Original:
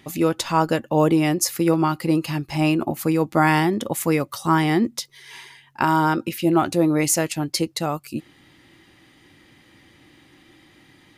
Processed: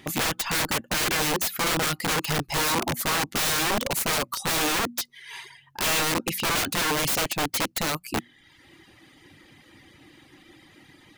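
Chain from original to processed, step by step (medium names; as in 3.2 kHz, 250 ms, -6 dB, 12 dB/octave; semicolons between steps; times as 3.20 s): hum notches 60/120/180/240 Hz; reverb removal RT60 0.87 s; integer overflow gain 22 dB; trim +2.5 dB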